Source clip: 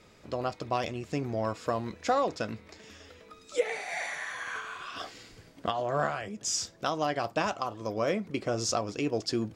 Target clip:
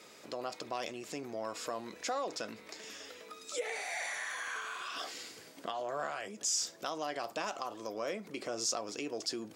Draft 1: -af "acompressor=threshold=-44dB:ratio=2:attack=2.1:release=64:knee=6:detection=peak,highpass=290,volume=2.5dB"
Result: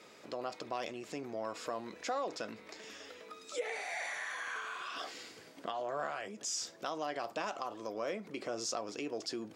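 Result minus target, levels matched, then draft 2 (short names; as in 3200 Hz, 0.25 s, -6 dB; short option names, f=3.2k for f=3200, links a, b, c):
8000 Hz band -4.0 dB
-af "acompressor=threshold=-44dB:ratio=2:attack=2.1:release=64:knee=6:detection=peak,highpass=290,highshelf=f=5.6k:g=9.5,volume=2.5dB"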